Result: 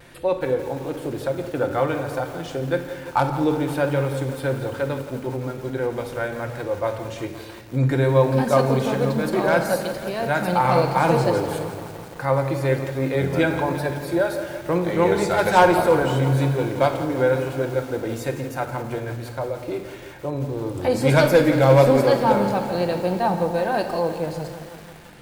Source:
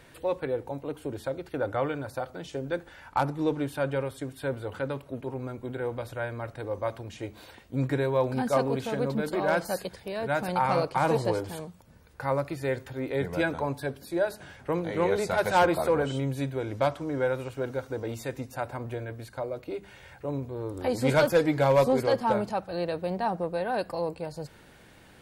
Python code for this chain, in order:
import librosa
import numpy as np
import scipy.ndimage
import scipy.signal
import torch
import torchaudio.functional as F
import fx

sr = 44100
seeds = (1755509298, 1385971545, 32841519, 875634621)

y = fx.room_shoebox(x, sr, seeds[0], volume_m3=980.0, walls='mixed', distance_m=0.84)
y = fx.vibrato(y, sr, rate_hz=1.1, depth_cents=36.0)
y = fx.echo_crushed(y, sr, ms=171, feedback_pct=80, bits=7, wet_db=-13.0)
y = y * librosa.db_to_amplitude(5.5)